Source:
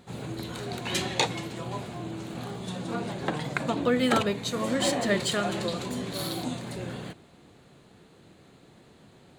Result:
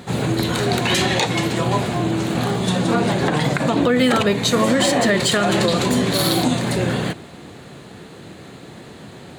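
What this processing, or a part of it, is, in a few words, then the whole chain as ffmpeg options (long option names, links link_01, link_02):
mastering chain: -af "highpass=60,equalizer=frequency=1800:width_type=o:width=0.33:gain=2.5,acompressor=threshold=-30dB:ratio=2,asoftclip=type=hard:threshold=-15dB,alimiter=level_in=22.5dB:limit=-1dB:release=50:level=0:latency=1,volume=-6.5dB"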